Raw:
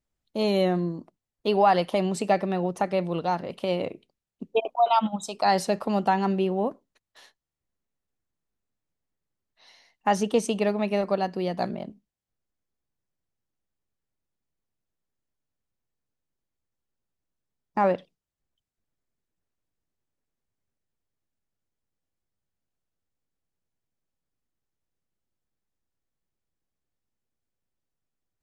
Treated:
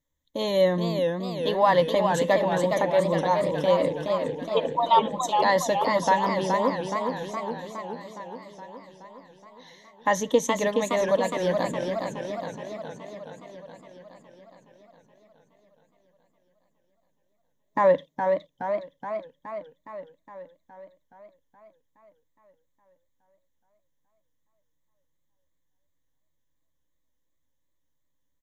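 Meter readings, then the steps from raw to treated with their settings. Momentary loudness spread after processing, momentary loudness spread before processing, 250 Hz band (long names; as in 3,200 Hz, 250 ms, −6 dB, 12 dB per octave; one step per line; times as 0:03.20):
18 LU, 10 LU, −1.5 dB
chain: EQ curve with evenly spaced ripples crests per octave 1.1, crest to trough 14 dB
on a send: single-tap delay 932 ms −23.5 dB
on the sum: feedback echo with a swinging delay time 418 ms, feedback 65%, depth 146 cents, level −5 dB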